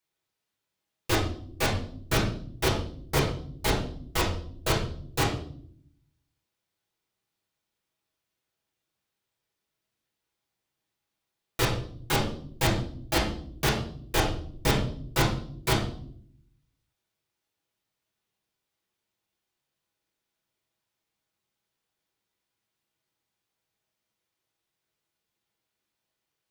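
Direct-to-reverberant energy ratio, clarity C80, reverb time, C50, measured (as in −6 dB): −7.0 dB, 9.5 dB, non-exponential decay, 5.5 dB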